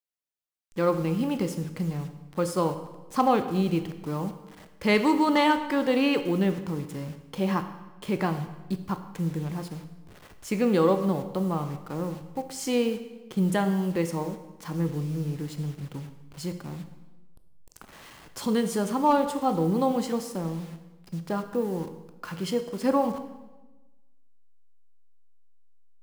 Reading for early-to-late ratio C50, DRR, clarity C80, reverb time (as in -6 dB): 10.5 dB, 8.0 dB, 12.0 dB, 1.1 s